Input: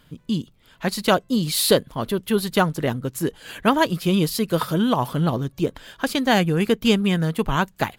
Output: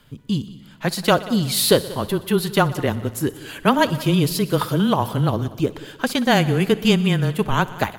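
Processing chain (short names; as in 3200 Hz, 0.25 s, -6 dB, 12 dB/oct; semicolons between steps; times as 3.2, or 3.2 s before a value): multi-head echo 61 ms, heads all three, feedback 49%, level -21.5 dB; frequency shift -19 Hz; gain +1.5 dB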